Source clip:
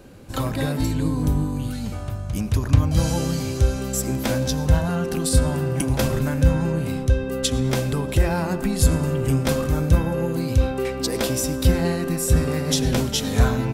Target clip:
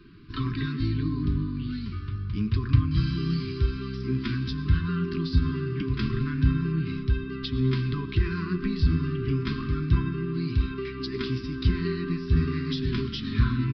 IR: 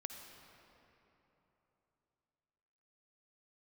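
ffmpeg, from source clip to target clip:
-filter_complex "[0:a]afftfilt=real='re*(1-between(b*sr/4096,420,1000))':imag='im*(1-between(b*sr/4096,420,1000))':win_size=4096:overlap=0.75,acrossover=split=280[a][b];[b]acompressor=threshold=-27dB:ratio=2.5[c];[a][c]amix=inputs=2:normalize=0,flanger=delay=5.4:depth=6.8:regen=63:speed=0.28:shape=triangular,aresample=11025,aresample=44100"

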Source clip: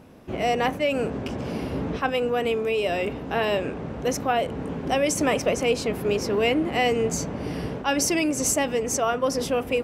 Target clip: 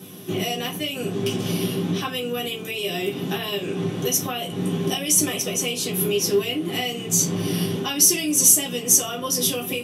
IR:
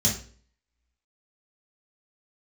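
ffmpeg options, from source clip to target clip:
-filter_complex "[0:a]equalizer=f=3.2k:t=o:w=0.76:g=10,acompressor=threshold=-29dB:ratio=10,crystalizer=i=9:c=0[a];[1:a]atrim=start_sample=2205,asetrate=79380,aresample=44100[b];[a][b]afir=irnorm=-1:irlink=0,volume=-8.5dB"

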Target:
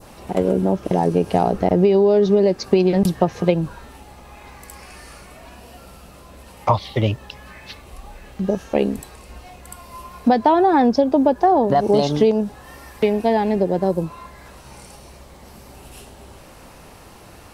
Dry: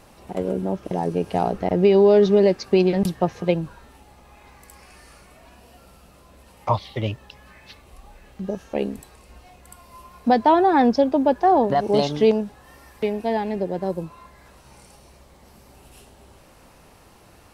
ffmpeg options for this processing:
-af "adynamicequalizer=threshold=0.0112:dfrequency=2300:dqfactor=0.73:tfrequency=2300:tqfactor=0.73:attack=5:release=100:ratio=0.375:range=2.5:mode=cutabove:tftype=bell,acompressor=threshold=-19dB:ratio=6,volume=7.5dB"

